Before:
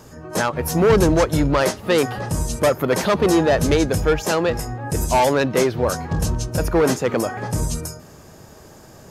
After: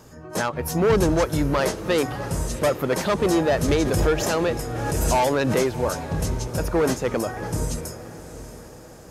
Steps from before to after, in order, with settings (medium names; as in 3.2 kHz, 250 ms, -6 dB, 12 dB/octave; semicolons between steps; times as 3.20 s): echo that smears into a reverb 716 ms, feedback 47%, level -14 dB; 3.68–5.61 s: swell ahead of each attack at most 24 dB/s; trim -4 dB